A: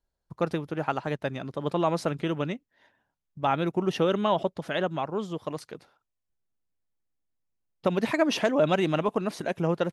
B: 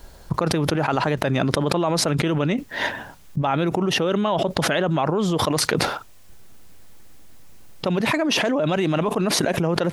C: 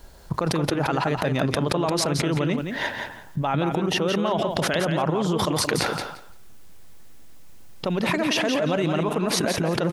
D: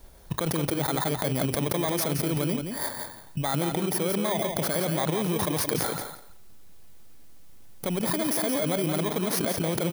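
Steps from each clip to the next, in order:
envelope flattener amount 100%; level −2 dB
repeating echo 172 ms, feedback 16%, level −6 dB; level −3 dB
samples in bit-reversed order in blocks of 16 samples; level −3.5 dB

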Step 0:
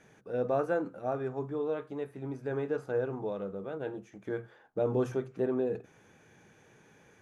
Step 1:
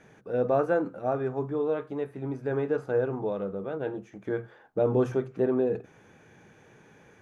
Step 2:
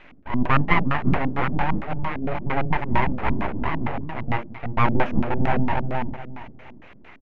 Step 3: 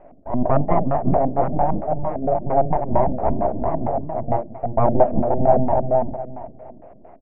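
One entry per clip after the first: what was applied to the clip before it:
high-shelf EQ 4,000 Hz −7 dB; level +5 dB
repeating echo 354 ms, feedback 29%, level −4.5 dB; full-wave rectification; auto-filter low-pass square 4.4 Hz 250–2,400 Hz; level +7.5 dB
low-pass with resonance 660 Hz, resonance Q 6.2

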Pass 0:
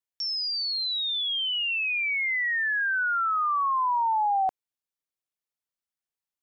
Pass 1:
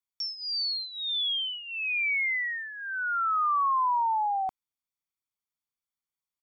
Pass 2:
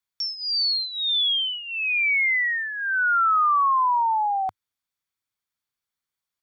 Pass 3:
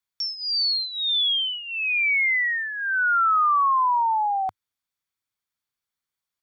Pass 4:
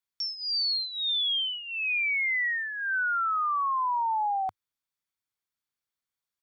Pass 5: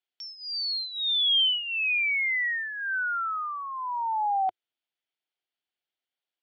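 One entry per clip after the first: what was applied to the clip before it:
comb filter 0.9 ms, depth 70%; level −4.5 dB
graphic EQ with 15 bands 100 Hz +5 dB, 1,600 Hz +6 dB, 4,000 Hz +4 dB; level +3.5 dB
no processing that can be heard
brickwall limiter −20 dBFS, peak gain reduction 4 dB; level −4 dB
loudspeaker in its box 290–4,400 Hz, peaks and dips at 360 Hz +5 dB, 710 Hz +7 dB, 1,100 Hz −9 dB, 3,000 Hz +8 dB

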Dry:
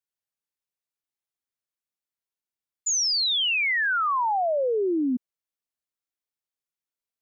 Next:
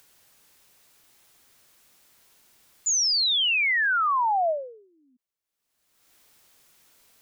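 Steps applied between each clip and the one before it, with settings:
upward compression, threshold −36 dBFS
every ending faded ahead of time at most 100 dB per second
level +1 dB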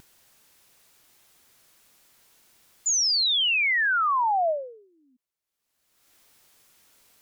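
pitch vibrato 0.85 Hz 17 cents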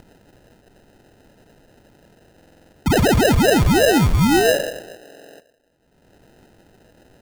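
convolution reverb RT60 1.5 s, pre-delay 6 ms, DRR 9.5 dB
decimation without filtering 39×
buffer that repeats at 0:02.35/0:05.03, samples 2,048, times 7
level +8 dB

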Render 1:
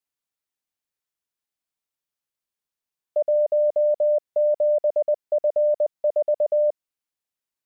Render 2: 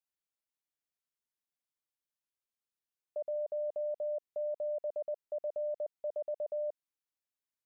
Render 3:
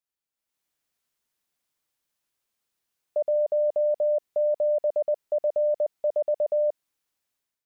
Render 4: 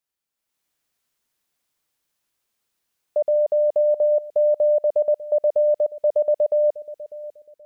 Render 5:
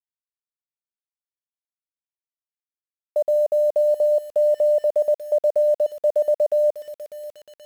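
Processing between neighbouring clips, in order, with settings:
brickwall limiter −23.5 dBFS, peak gain reduction 7.5 dB; level −8 dB
automatic gain control gain up to 12 dB
bucket-brigade delay 597 ms, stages 2,048, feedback 36%, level −13 dB; level +4.5 dB
bit reduction 8 bits

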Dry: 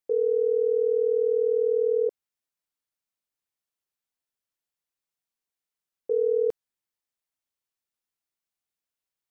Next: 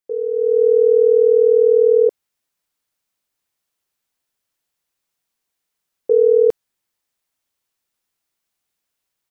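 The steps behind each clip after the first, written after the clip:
automatic gain control gain up to 11 dB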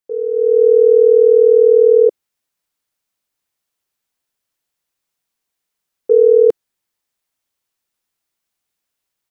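dynamic equaliser 360 Hz, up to +5 dB, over −24 dBFS, Q 1.4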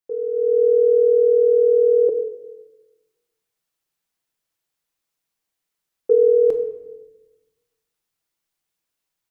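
rectangular room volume 480 cubic metres, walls mixed, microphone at 0.65 metres
level −3.5 dB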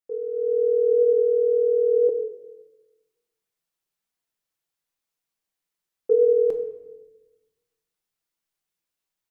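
flanger 0.96 Hz, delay 4 ms, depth 2 ms, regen +84%

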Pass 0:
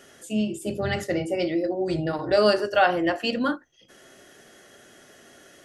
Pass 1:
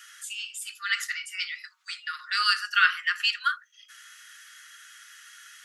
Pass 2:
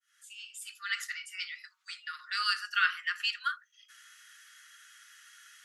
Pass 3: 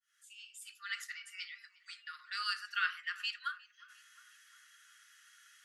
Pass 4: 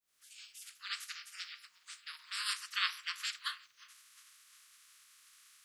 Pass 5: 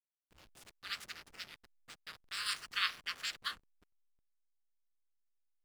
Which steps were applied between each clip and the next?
Butterworth high-pass 1,200 Hz 96 dB per octave; level +5 dB
fade in at the beginning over 0.66 s; level −6.5 dB
feedback echo with a low-pass in the loop 356 ms, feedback 64%, low-pass 3,200 Hz, level −20.5 dB; level −6.5 dB
ceiling on every frequency bin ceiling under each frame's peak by 28 dB
slack as between gear wheels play −42 dBFS

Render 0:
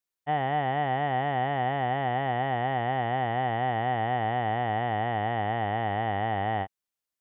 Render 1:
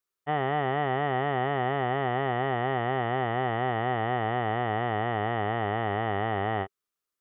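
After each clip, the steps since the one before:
thirty-one-band graphic EQ 400 Hz +9 dB, 800 Hz −4 dB, 1,250 Hz +10 dB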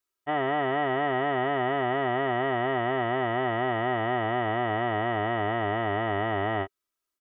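comb filter 3.1 ms, depth 66%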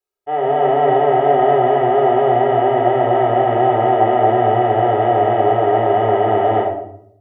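flat-topped bell 570 Hz +12.5 dB 1.3 octaves
automatic gain control gain up to 8.5 dB
convolution reverb RT60 0.70 s, pre-delay 18 ms, DRR 0.5 dB
level −7 dB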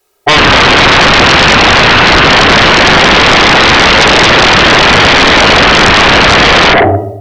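in parallel at +2 dB: compressor whose output falls as the input rises −20 dBFS, ratio −1
on the sum: sine wavefolder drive 18 dB, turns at 2 dBFS
level −3.5 dB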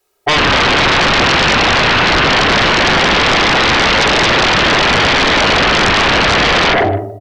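single-tap delay 152 ms −19 dB
level −6.5 dB

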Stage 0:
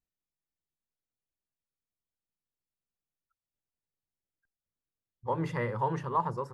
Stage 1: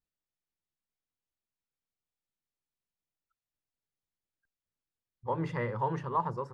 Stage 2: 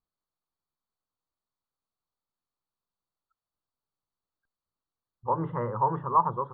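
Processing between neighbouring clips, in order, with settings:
high-frequency loss of the air 58 metres; level −1 dB
hearing-aid frequency compression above 2,800 Hz 4 to 1; high shelf with overshoot 1,700 Hz −13 dB, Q 3; level +1.5 dB

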